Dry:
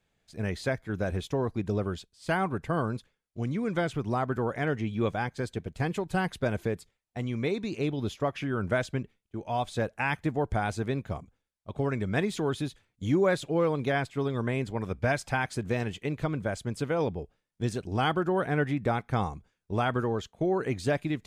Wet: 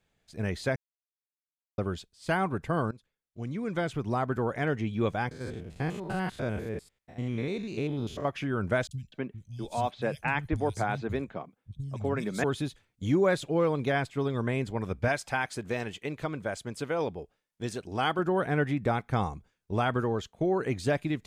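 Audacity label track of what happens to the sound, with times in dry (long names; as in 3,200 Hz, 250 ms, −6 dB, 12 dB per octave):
0.760000	1.780000	silence
2.910000	4.480000	fade in equal-power, from −18 dB
5.310000	8.250000	spectrum averaged block by block every 100 ms
8.870000	12.440000	three-band delay without the direct sound lows, highs, mids 40/250 ms, splits 160/4,000 Hz
15.080000	18.190000	low-shelf EQ 220 Hz −9.5 dB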